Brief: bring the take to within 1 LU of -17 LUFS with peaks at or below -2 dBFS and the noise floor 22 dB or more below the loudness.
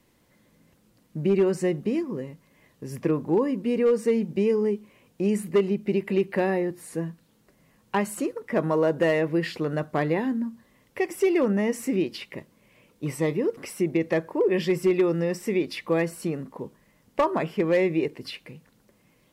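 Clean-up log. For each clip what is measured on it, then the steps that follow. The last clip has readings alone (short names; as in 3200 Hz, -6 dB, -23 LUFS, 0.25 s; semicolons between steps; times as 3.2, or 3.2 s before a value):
clipped 0.3%; flat tops at -14.5 dBFS; loudness -25.5 LUFS; peak -14.5 dBFS; loudness target -17.0 LUFS
-> clip repair -14.5 dBFS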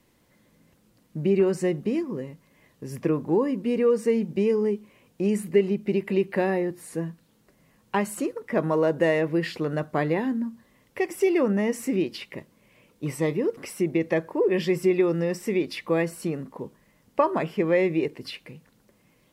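clipped 0.0%; loudness -25.5 LUFS; peak -7.0 dBFS; loudness target -17.0 LUFS
-> gain +8.5 dB; limiter -2 dBFS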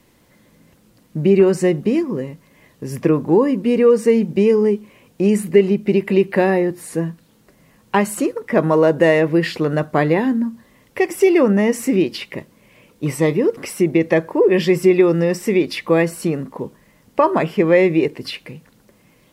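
loudness -17.0 LUFS; peak -2.0 dBFS; noise floor -55 dBFS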